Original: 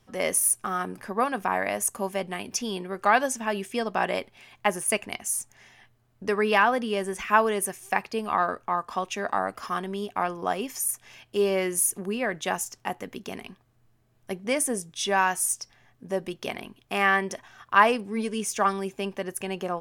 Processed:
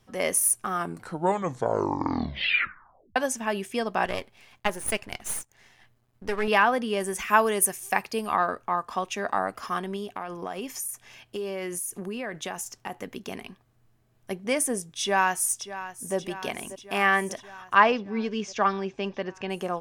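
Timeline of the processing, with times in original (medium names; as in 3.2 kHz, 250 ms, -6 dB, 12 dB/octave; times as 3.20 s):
0.71 s: tape stop 2.45 s
4.05–6.48 s: partial rectifier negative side -12 dB
7.00–8.37 s: treble shelf 6.8 kHz +10 dB
9.96–12.96 s: compression, threshold -29 dBFS
15.00–16.16 s: echo throw 590 ms, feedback 70%, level -13.5 dB
17.74–19.50 s: inverse Chebyshev low-pass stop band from 9.8 kHz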